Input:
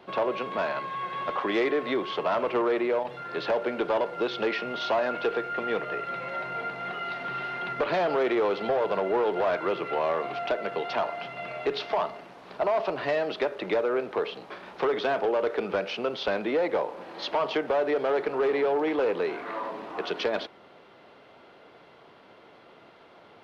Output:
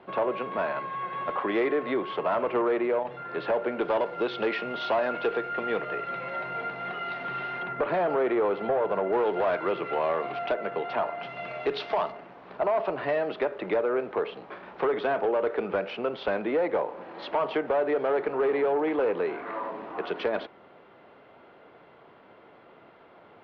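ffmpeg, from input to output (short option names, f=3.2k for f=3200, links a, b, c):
-af "asetnsamples=n=441:p=0,asendcmd='3.81 lowpass f 3600;7.63 lowpass f 1900;9.13 lowpass f 3300;10.54 lowpass f 2300;11.23 lowpass f 4300;12.12 lowpass f 2400',lowpass=2.4k"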